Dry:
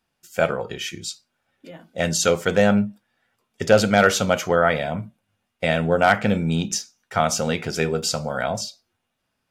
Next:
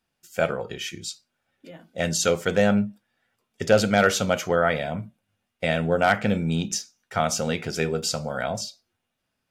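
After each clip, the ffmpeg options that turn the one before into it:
ffmpeg -i in.wav -af "equalizer=frequency=1000:width_type=o:width=0.77:gain=-2.5,volume=-2.5dB" out.wav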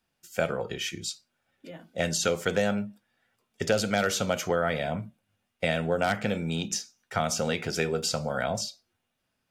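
ffmpeg -i in.wav -filter_complex "[0:a]acrossover=split=390|3800[link_01][link_02][link_03];[link_01]acompressor=threshold=-30dB:ratio=4[link_04];[link_02]acompressor=threshold=-25dB:ratio=4[link_05];[link_03]acompressor=threshold=-29dB:ratio=4[link_06];[link_04][link_05][link_06]amix=inputs=3:normalize=0" out.wav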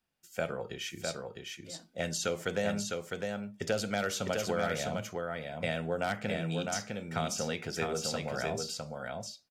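ffmpeg -i in.wav -af "aecho=1:1:656:0.631,volume=-6.5dB" out.wav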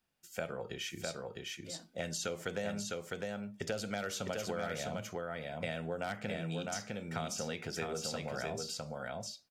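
ffmpeg -i in.wav -af "acompressor=threshold=-40dB:ratio=2,volume=1dB" out.wav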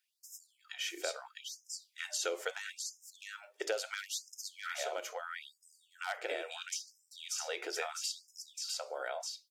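ffmpeg -i in.wav -af "afftfilt=real='re*gte(b*sr/1024,300*pow(5100/300,0.5+0.5*sin(2*PI*0.75*pts/sr)))':imag='im*gte(b*sr/1024,300*pow(5100/300,0.5+0.5*sin(2*PI*0.75*pts/sr)))':win_size=1024:overlap=0.75,volume=3dB" out.wav

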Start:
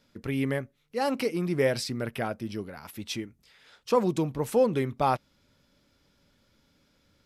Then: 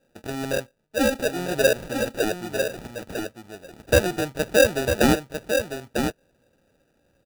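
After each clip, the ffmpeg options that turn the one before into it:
ffmpeg -i in.wav -af "firequalizer=gain_entry='entry(200,0);entry(610,14);entry(2200,1)':delay=0.05:min_phase=1,acrusher=samples=41:mix=1:aa=0.000001,aecho=1:1:949:0.473,volume=-4.5dB" out.wav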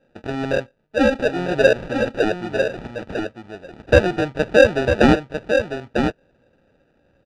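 ffmpeg -i in.wav -af "lowpass=3100,volume=5dB" out.wav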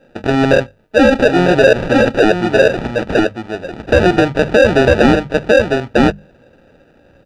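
ffmpeg -i in.wav -af "bandreject=frequency=50:width_type=h:width=6,bandreject=frequency=100:width_type=h:width=6,bandreject=frequency=150:width_type=h:width=6,bandreject=frequency=200:width_type=h:width=6,alimiter=level_in=13.5dB:limit=-1dB:release=50:level=0:latency=1,volume=-1dB" out.wav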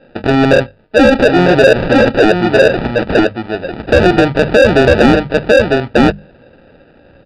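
ffmpeg -i in.wav -af "acrusher=bits=9:mode=log:mix=0:aa=0.000001,aresample=11025,aresample=44100,acontrast=37,volume=-1dB" out.wav

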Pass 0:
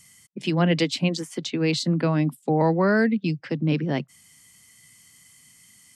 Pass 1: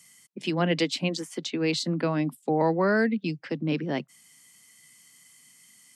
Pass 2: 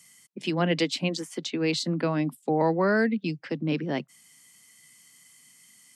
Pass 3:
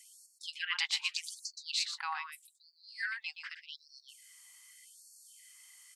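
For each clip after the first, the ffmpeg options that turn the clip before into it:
ffmpeg -i in.wav -af "highpass=200,volume=-2dB" out.wav
ffmpeg -i in.wav -af anull out.wav
ffmpeg -i in.wav -af "aecho=1:1:121:0.398,afftfilt=real='re*gte(b*sr/1024,710*pow(4300/710,0.5+0.5*sin(2*PI*0.83*pts/sr)))':imag='im*gte(b*sr/1024,710*pow(4300/710,0.5+0.5*sin(2*PI*0.83*pts/sr)))':win_size=1024:overlap=0.75,volume=-2dB" out.wav

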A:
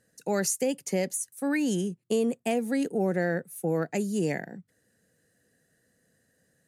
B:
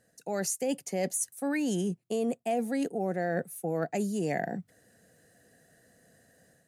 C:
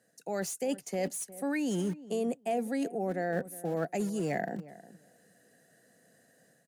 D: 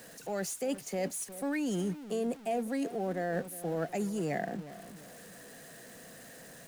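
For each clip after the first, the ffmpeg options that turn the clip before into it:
ffmpeg -i in.wav -af "dynaudnorm=framelen=310:gausssize=3:maxgain=6.5dB,equalizer=frequency=700:width=3.8:gain=9,areverse,acompressor=threshold=-29dB:ratio=4,areverse" out.wav
ffmpeg -i in.wav -filter_complex "[0:a]acrossover=split=120|2300[link_01][link_02][link_03];[link_01]acrusher=bits=7:mix=0:aa=0.000001[link_04];[link_03]asoftclip=type=tanh:threshold=-32dB[link_05];[link_04][link_02][link_05]amix=inputs=3:normalize=0,asplit=2[link_06][link_07];[link_07]adelay=359,lowpass=frequency=1100:poles=1,volume=-16.5dB,asplit=2[link_08][link_09];[link_09]adelay=359,lowpass=frequency=1100:poles=1,volume=0.18[link_10];[link_06][link_08][link_10]amix=inputs=3:normalize=0,volume=-1.5dB" out.wav
ffmpeg -i in.wav -af "aeval=exprs='val(0)+0.5*0.00631*sgn(val(0))':channel_layout=same,volume=-2dB" out.wav

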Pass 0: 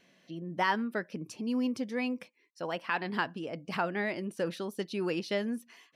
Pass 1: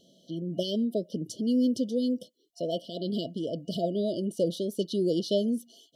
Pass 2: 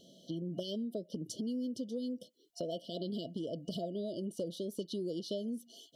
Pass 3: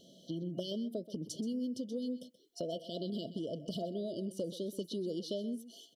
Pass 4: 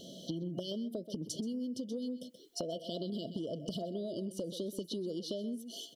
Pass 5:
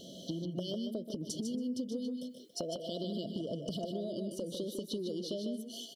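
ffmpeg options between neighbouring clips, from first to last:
ffmpeg -i in.wav -af "afftfilt=real='re*(1-between(b*sr/4096,690,2900))':imag='im*(1-between(b*sr/4096,690,2900))':win_size=4096:overlap=0.75,volume=6dB" out.wav
ffmpeg -i in.wav -af "acompressor=threshold=-38dB:ratio=5,volume=1.5dB" out.wav
ffmpeg -i in.wav -af "aecho=1:1:128:0.178" out.wav
ffmpeg -i in.wav -af "acompressor=threshold=-46dB:ratio=6,volume=10dB" out.wav
ffmpeg -i in.wav -af "aecho=1:1:151:0.473" out.wav

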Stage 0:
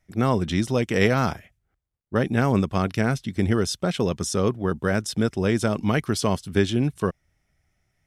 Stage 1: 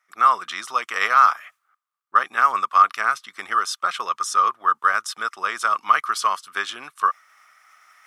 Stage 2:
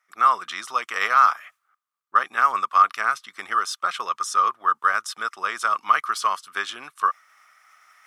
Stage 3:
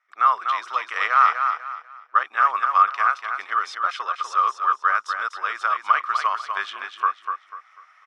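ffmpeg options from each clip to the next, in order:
ffmpeg -i in.wav -af "areverse,acompressor=mode=upward:threshold=-37dB:ratio=2.5,areverse,highpass=frequency=1200:width_type=q:width=11" out.wav
ffmpeg -i in.wav -af "deesser=0.45,volume=-1.5dB" out.wav
ffmpeg -i in.wav -filter_complex "[0:a]highpass=540,lowpass=3600,asplit=2[link_01][link_02];[link_02]aecho=0:1:246|492|738|984:0.473|0.142|0.0426|0.0128[link_03];[link_01][link_03]amix=inputs=2:normalize=0" out.wav

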